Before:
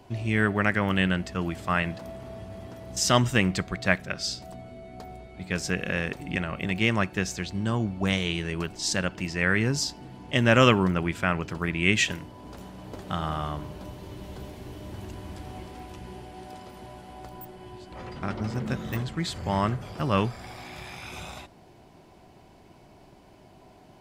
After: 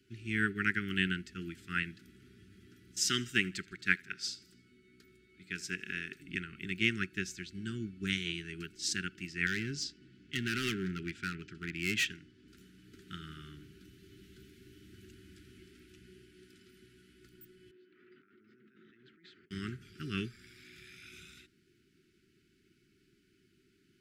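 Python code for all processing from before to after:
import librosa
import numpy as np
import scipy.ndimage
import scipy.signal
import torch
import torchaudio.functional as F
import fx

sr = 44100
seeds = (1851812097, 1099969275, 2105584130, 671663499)

y = fx.chain(x, sr, fx.low_shelf(hz=180.0, db=-7.5),
    fx.echo_feedback(ms=79, feedback_pct=55, wet_db=-21), at=(2.91, 6.22))
y = fx.chain(y, sr, fx.lowpass(hz=6300.0, slope=12),
    fx.clip_hard(threshold_db=-21.0), at=(9.46, 12.48))
y = fx.chain(y, sr, fx.highpass(hz=420.0, slope=12),
    fx.spacing_loss(db_at_10k=45),
    fx.over_compress(threshold_db=-47.0, ratio=-1.0), at=(17.71, 19.51))
y = scipy.signal.sosfilt(scipy.signal.cheby1(4, 1.0, [390.0, 1400.0], 'bandstop', fs=sr, output='sos'), y)
y = fx.low_shelf(y, sr, hz=170.0, db=-9.5)
y = fx.upward_expand(y, sr, threshold_db=-38.0, expansion=1.5)
y = y * 10.0 ** (-2.5 / 20.0)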